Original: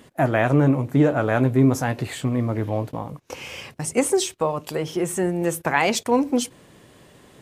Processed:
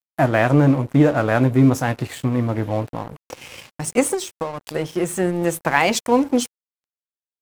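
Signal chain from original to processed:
notch filter 410 Hz, Q 12
0:04.14–0:04.74: downward compressor 4 to 1, threshold −25 dBFS, peak gain reduction 7 dB
dead-zone distortion −38 dBFS
level +3.5 dB

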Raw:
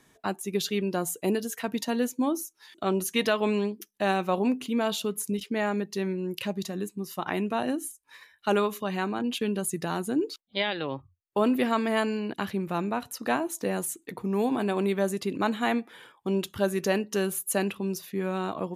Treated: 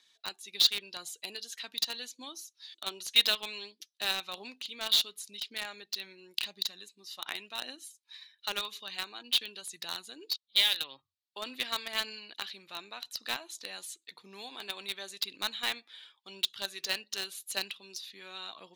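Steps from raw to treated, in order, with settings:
phase shifter 0.91 Hz, delay 4 ms, feedback 27%
resonant band-pass 4,000 Hz, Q 3.7
in parallel at −4 dB: bit reduction 6 bits
on the sum: level +8 dB

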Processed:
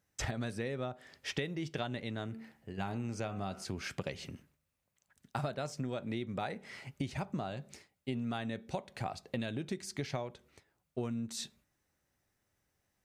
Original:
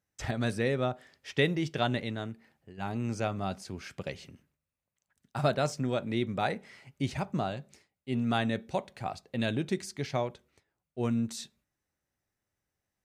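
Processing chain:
0:02.26–0:03.65: hum removal 74.57 Hz, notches 40
downward compressor 12 to 1, threshold −39 dBFS, peak gain reduction 18.5 dB
level +5.5 dB

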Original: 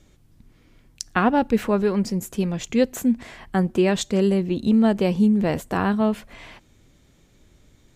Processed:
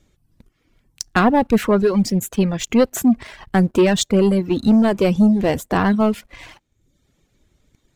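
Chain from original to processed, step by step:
leveller curve on the samples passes 2
reverb reduction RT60 0.76 s

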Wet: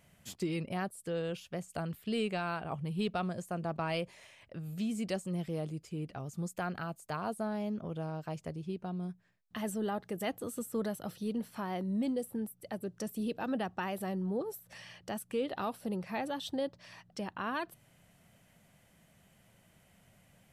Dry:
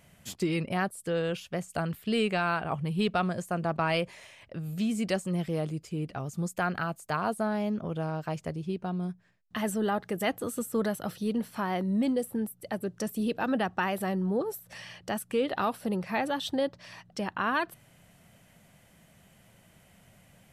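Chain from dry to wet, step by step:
dynamic equaliser 1,600 Hz, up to −4 dB, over −44 dBFS, Q 0.93
level −5.5 dB

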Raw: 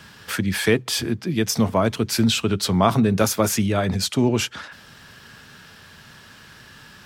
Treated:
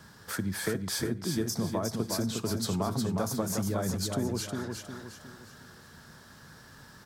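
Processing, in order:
parametric band 2,700 Hz −13.5 dB 0.88 octaves
downward compressor, threshold −23 dBFS, peak gain reduction 10.5 dB
repeating echo 359 ms, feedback 39%, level −4.5 dB
on a send at −20.5 dB: convolution reverb RT60 0.40 s, pre-delay 37 ms
on the sum: level −5 dB

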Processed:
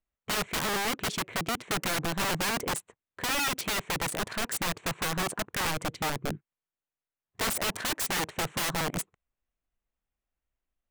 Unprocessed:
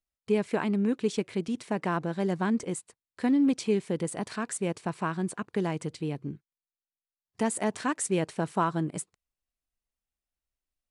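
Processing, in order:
adaptive Wiener filter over 9 samples
wrap-around overflow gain 29 dB
level +5 dB

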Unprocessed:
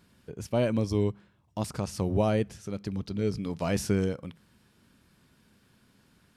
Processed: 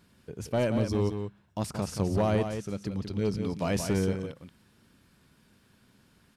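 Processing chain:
hard clipping −20.5 dBFS, distortion −17 dB
single-tap delay 178 ms −7.5 dB

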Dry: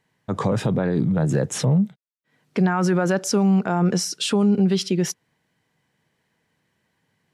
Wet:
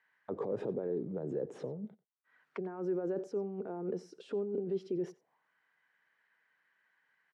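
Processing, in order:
low-shelf EQ 87 Hz −9 dB
compressor whose output falls as the input rises −25 dBFS, ratio −1
brickwall limiter −20.5 dBFS, peak gain reduction 13 dB
envelope filter 410–1,600 Hz, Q 3, down, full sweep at −29.5 dBFS
on a send: single-tap delay 91 ms −20.5 dB

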